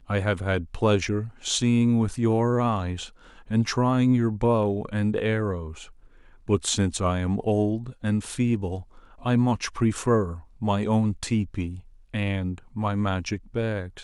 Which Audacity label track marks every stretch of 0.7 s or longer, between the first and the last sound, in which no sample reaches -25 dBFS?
5.570000	6.490000	silence